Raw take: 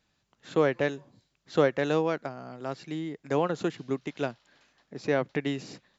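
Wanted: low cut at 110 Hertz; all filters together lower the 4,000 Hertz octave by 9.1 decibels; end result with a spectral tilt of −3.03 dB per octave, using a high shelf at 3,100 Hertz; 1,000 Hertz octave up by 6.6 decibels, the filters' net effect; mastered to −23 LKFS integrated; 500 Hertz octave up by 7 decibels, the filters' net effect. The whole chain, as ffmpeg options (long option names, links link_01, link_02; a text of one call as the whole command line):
ffmpeg -i in.wav -af "highpass=110,equalizer=frequency=500:width_type=o:gain=6.5,equalizer=frequency=1000:width_type=o:gain=7.5,highshelf=frequency=3100:gain=-6,equalizer=frequency=4000:width_type=o:gain=-8.5,volume=1dB" out.wav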